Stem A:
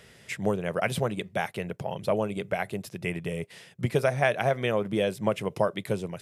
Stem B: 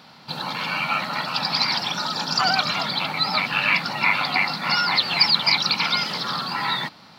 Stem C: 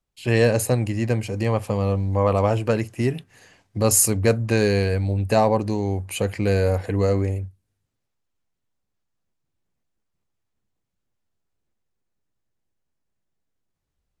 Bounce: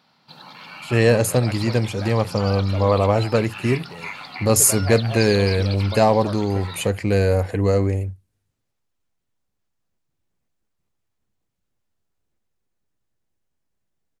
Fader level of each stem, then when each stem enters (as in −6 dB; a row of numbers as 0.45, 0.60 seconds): −7.5, −13.5, +2.0 decibels; 0.65, 0.00, 0.65 seconds